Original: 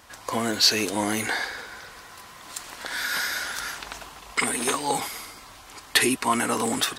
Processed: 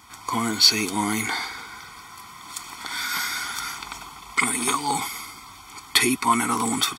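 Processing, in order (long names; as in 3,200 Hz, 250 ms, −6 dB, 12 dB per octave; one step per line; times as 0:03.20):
high-pass filter 89 Hz 6 dB per octave
comb filter 0.9 ms, depth 99%
level −1 dB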